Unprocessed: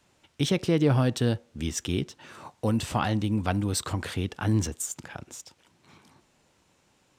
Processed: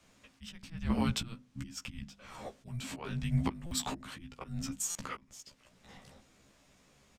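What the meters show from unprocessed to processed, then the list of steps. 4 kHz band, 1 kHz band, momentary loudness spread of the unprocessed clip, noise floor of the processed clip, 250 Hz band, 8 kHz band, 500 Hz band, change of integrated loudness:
−7.0 dB, −9.5 dB, 17 LU, −66 dBFS, −10.0 dB, −5.5 dB, −16.5 dB, −10.0 dB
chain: volume swells 672 ms
dynamic equaliser 2,100 Hz, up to +3 dB, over −50 dBFS, Q 0.7
mains-hum notches 50/100/150/200/250/300 Hz
frequency shifter −350 Hz
double-tracking delay 15 ms −4 dB
buffer that repeats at 0:03.66/0:04.90, samples 256, times 8

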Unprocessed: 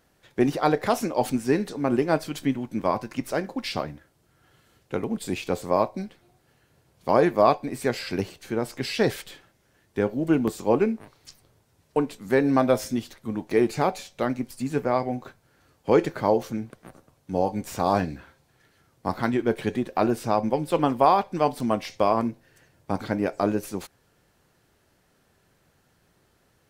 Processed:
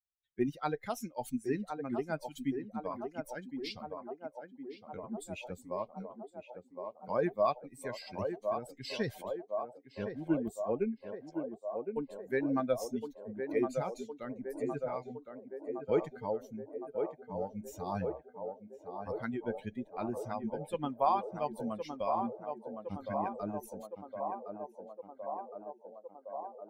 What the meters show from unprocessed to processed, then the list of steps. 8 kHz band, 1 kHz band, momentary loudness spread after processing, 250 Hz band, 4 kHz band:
−13.0 dB, −11.0 dB, 13 LU, −11.5 dB, −13.0 dB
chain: spectral dynamics exaggerated over time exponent 2
feedback echo with a band-pass in the loop 1,063 ms, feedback 82%, band-pass 610 Hz, level −4.5 dB
level −7 dB

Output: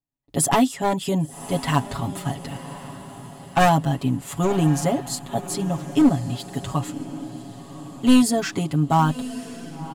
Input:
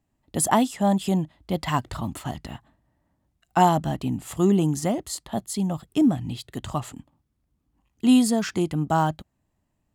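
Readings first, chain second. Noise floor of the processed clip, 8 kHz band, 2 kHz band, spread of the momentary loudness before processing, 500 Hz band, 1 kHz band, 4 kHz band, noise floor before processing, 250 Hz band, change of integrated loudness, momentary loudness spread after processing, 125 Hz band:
−42 dBFS, +3.0 dB, +5.0 dB, 14 LU, +2.0 dB, +2.0 dB, +3.5 dB, −75 dBFS, +1.5 dB, +2.0 dB, 18 LU, +4.0 dB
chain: wavefolder on the positive side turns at −15 dBFS
noise gate with hold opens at −56 dBFS
comb filter 7.2 ms, depth 97%
on a send: feedback delay with all-pass diffusion 1,086 ms, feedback 48%, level −14 dB

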